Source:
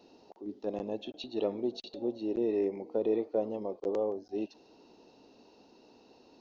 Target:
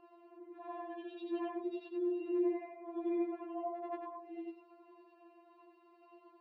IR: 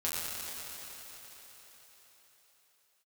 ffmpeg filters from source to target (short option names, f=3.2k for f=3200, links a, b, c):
-filter_complex "[0:a]afftfilt=real='re':imag='-im':win_size=8192:overlap=0.75,highpass=220,equalizer=f=300:t=q:w=4:g=-6,equalizer=f=620:t=q:w=4:g=-9,equalizer=f=930:t=q:w=4:g=9,equalizer=f=1.3k:t=q:w=4:g=-4,lowpass=f=2.1k:w=0.5412,lowpass=f=2.1k:w=1.3066,acrossover=split=370[a][b];[a]acompressor=threshold=-54dB:ratio=12[c];[c][b]amix=inputs=2:normalize=0,lowshelf=f=430:g=-6.5,afftfilt=real='re*4*eq(mod(b,16),0)':imag='im*4*eq(mod(b,16),0)':win_size=2048:overlap=0.75,volume=12dB"